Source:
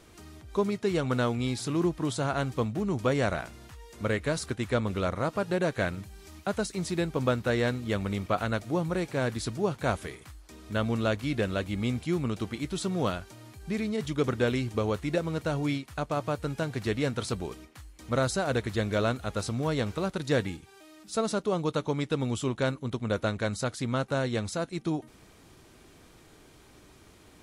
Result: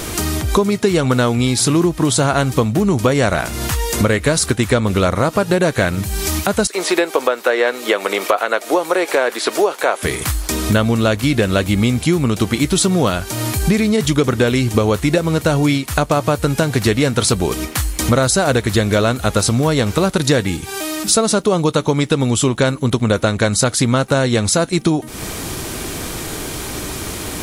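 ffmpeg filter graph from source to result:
-filter_complex "[0:a]asettb=1/sr,asplit=3[s0][s1][s2];[s0]atrim=end=6.674[s3];[s1]atrim=start=6.67:end=10.03,asetpts=PTS-STARTPTS,afade=t=in:d=0.004:c=qsin,afade=t=out:st=3.356:d=0.004:c=qsin,acrossover=split=3200[s4][s5];[s5]acompressor=threshold=0.002:ratio=4:attack=1:release=60[s6];[s4][s6]amix=inputs=2:normalize=0,highpass=f=400:w=0.5412,highpass=f=400:w=1.3066[s7];[s2]atrim=start=10.026[s8];[s3][s7]acrossfade=d=0.004:c1=hsin:c2=qsin[s9];[s9][s8]acrossfade=d=0.004:c1=qsin:c2=hsin,highshelf=f=7300:g=11,acompressor=threshold=0.00891:ratio=6,alimiter=level_in=28.2:limit=0.891:release=50:level=0:latency=1,volume=0.891"

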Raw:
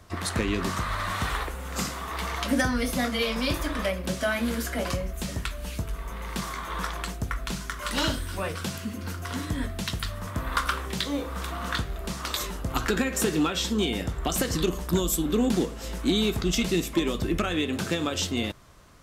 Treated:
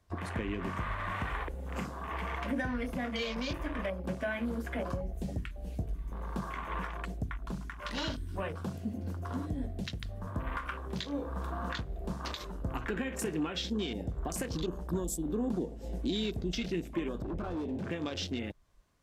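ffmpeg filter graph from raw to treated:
-filter_complex "[0:a]asettb=1/sr,asplit=3[s0][s1][s2];[s0]atrim=end=17.224[s3];[s1]atrim=start=17.22:end=17.91,asetpts=PTS-STARTPTS,afade=t=in:d=0.004:c=qsin,afade=t=out:st=0.686:d=0.004:c=qsin,aemphasis=mode=reproduction:type=50fm,volume=31.6,asoftclip=hard,volume=0.0316[s4];[s2]atrim=start=17.906[s5];[s3][s4]acrossfade=d=0.004:c1=hsin:c2=qsin[s6];[s6][s5]acrossfade=d=0.004:c1=qsin:c2=hsin,bandreject=f=1300:w=10,afwtdn=0.0178,alimiter=limit=0.075:level=0:latency=1:release=351,volume=0.75"

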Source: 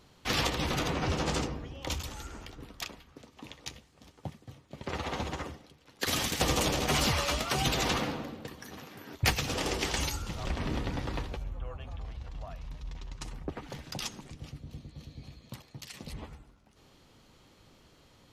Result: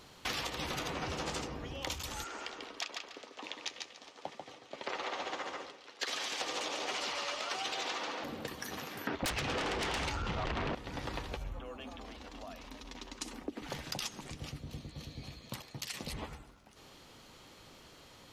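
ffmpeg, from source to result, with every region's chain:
-filter_complex "[0:a]asettb=1/sr,asplit=3[s0][s1][s2];[s0]atrim=end=2.244[s3];[s1]atrim=start=2.24:end=8.24,asetpts=PTS-STARTPTS,afade=t=in:d=0.004:c=qsin,afade=t=out:st=5.996:d=0.004:c=qsin,acrossover=split=290 7300:gain=0.0631 1 0.0794[s4][s5][s6];[s4][s5][s6]amix=inputs=3:normalize=0,aecho=1:1:142|284|426:0.501|0.1|0.02,atrim=end_sample=264600[s7];[s2]atrim=start=8.236[s8];[s3][s7]acrossfade=d=0.004:c1=hsin:c2=qsin[s9];[s9][s8]acrossfade=d=0.004:c1=qsin:c2=hsin,asettb=1/sr,asplit=3[s10][s11][s12];[s10]atrim=end=9.074[s13];[s11]atrim=start=9.07:end=10.75,asetpts=PTS-STARTPTS,afade=t=in:d=0.004:c=qsin,afade=t=out:st=1.676:d=0.004:c=qsin,lowpass=2700,aeval=exprs='0.168*sin(PI/2*5.62*val(0)/0.168)':c=same[s14];[s12]atrim=start=10.746[s15];[s13][s14]acrossfade=d=0.004:c1=hsin:c2=qsin[s16];[s16][s15]acrossfade=d=0.004:c1=qsin:c2=hsin,asettb=1/sr,asplit=3[s17][s18][s19];[s17]atrim=end=11.594[s20];[s18]atrim=start=11.59:end=13.62,asetpts=PTS-STARTPTS,afade=t=in:d=0.004:c=qsin,afade=t=out:st=2.026:d=0.004:c=qsin,lowshelf=f=180:t=q:w=3:g=-11.5,acrossover=split=350|3000[s21][s22][s23];[s22]acompressor=threshold=0.00224:ratio=3:attack=3.2:release=140:knee=2.83:detection=peak[s24];[s21][s24][s23]amix=inputs=3:normalize=0[s25];[s19]atrim=start=13.616[s26];[s20][s25]acrossfade=d=0.004:c1=hsin:c2=qsin[s27];[s27][s26]acrossfade=d=0.004:c1=qsin:c2=hsin,lowshelf=f=300:g=-8,acompressor=threshold=0.00794:ratio=6,volume=2.11"

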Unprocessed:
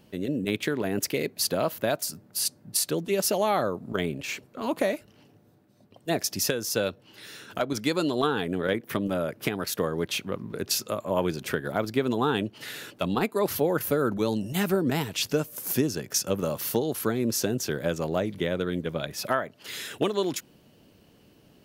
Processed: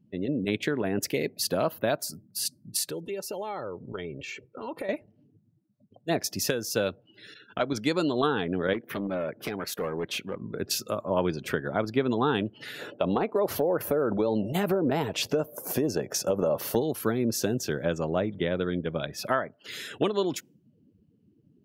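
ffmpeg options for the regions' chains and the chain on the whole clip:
-filter_complex "[0:a]asettb=1/sr,asplit=3[s0][s1][s2];[s0]atrim=end=2.894[s3];[s1]atrim=start=2.89:end=4.89,asetpts=PTS-STARTPTS,afade=t=in:d=0.004:c=qsin,afade=t=out:st=1.996:d=0.004:c=qsin,aecho=1:1:2.2:0.43,atrim=end_sample=88200,acompressor=threshold=0.0178:ratio=2.5:attack=3.2:release=140:knee=1:detection=peak[s4];[s2]atrim=start=4.886[s5];[s3][s4]acrossfade=d=0.004:c1=hsin:c2=qsin[s6];[s6][s5]acrossfade=d=0.004:c1=qsin:c2=hsin,asettb=1/sr,asplit=3[s7][s8][s9];[s7]atrim=end=7.344[s10];[s8]atrim=start=7.34:end=7.76,asetpts=PTS-STARTPTS,afade=t=in:d=0.004:c=qsin,afade=t=out:st=0.416:d=0.004:c=qsin,lowpass=5100,highshelf=f=2900:g=5,agate=range=0.0224:threshold=0.00891:ratio=3:release=100:detection=peak[s11];[s9]atrim=start=7.756[s12];[s10][s11]acrossfade=d=0.004:c1=hsin:c2=qsin[s13];[s13][s12]acrossfade=d=0.004:c1=qsin:c2=hsin,asettb=1/sr,asplit=3[s14][s15][s16];[s14]atrim=end=8.734[s17];[s15]atrim=start=8.73:end=10.42,asetpts=PTS-STARTPTS,afade=t=in:d=0.004:c=qsin,afade=t=out:st=1.686:d=0.004:c=qsin,lowshelf=f=130:g=-8.5,asoftclip=type=hard:threshold=0.0531,acompressor=mode=upward:threshold=0.0112:ratio=2.5:attack=3.2:release=140:knee=2.83:detection=peak[s18];[s16]atrim=start=10.416[s19];[s17][s18]acrossfade=d=0.004:c1=hsin:c2=qsin[s20];[s20][s19]acrossfade=d=0.004:c1=qsin:c2=hsin,asettb=1/sr,asplit=3[s21][s22][s23];[s21]atrim=end=12.794[s24];[s22]atrim=start=12.79:end=16.76,asetpts=PTS-STARTPTS,afade=t=in:d=0.004:c=qsin,afade=t=out:st=3.966:d=0.004:c=qsin,equalizer=f=590:w=0.88:g=10.5,acompressor=threshold=0.1:ratio=12:attack=3.2:release=140:knee=1:detection=peak[s25];[s23]atrim=start=16.756[s26];[s24][s25]acrossfade=d=0.004:c1=hsin:c2=qsin[s27];[s27][s26]acrossfade=d=0.004:c1=qsin:c2=hsin,afftdn=nr=27:nf=-47,highshelf=f=5100:g=-4.5"

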